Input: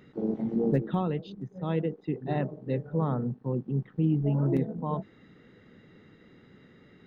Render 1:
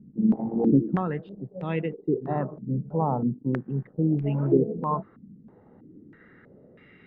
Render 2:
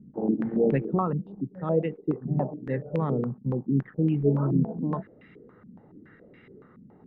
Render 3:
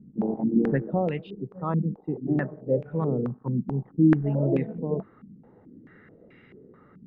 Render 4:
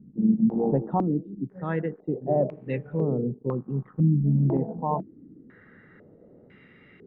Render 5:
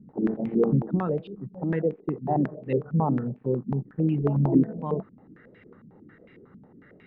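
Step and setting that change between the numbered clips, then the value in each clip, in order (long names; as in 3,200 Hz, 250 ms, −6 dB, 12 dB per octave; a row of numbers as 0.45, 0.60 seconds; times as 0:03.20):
low-pass on a step sequencer, speed: 3.1, 7.1, 4.6, 2, 11 Hertz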